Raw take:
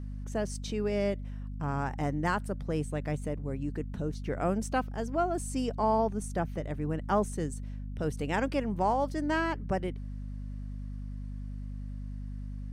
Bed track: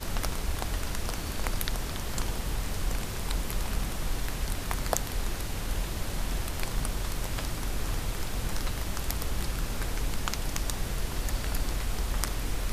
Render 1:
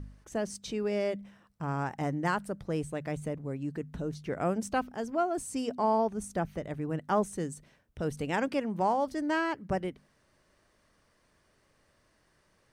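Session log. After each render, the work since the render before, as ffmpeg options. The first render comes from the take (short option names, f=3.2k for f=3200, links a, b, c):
-af "bandreject=f=50:t=h:w=4,bandreject=f=100:t=h:w=4,bandreject=f=150:t=h:w=4,bandreject=f=200:t=h:w=4,bandreject=f=250:t=h:w=4"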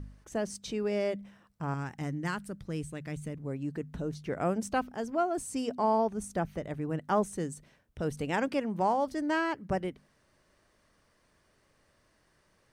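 -filter_complex "[0:a]asettb=1/sr,asplit=3[a][b][c];[a]atrim=end=1.744[d];[b]atrim=start=1.74:end=3.42,asetpts=PTS-STARTPTS,afade=t=in:d=0.004:c=qsin,afade=t=out:st=1.676:d=0.004:c=qsin,equalizer=f=700:w=0.81:g=-10.5[e];[c]atrim=start=3.416[f];[d][e]acrossfade=d=0.004:c1=hsin:c2=qsin[g];[g][f]acrossfade=d=0.004:c1=qsin:c2=hsin"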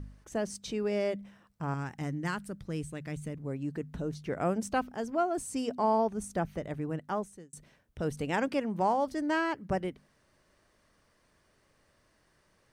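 -filter_complex "[0:a]asplit=2[a][b];[a]atrim=end=7.53,asetpts=PTS-STARTPTS,afade=t=out:st=6.8:d=0.73[c];[b]atrim=start=7.53,asetpts=PTS-STARTPTS,afade=t=in:d=0.004:c=hsin[d];[c][d]concat=n=2:v=0:a=1"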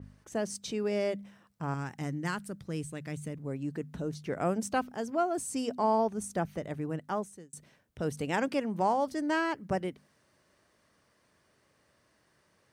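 -af "highpass=84,adynamicequalizer=threshold=0.00251:dfrequency=4100:dqfactor=0.7:tfrequency=4100:tqfactor=0.7:attack=5:release=100:ratio=0.375:range=1.5:mode=boostabove:tftype=highshelf"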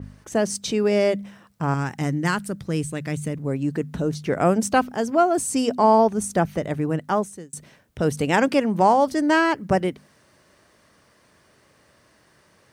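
-af "volume=11dB"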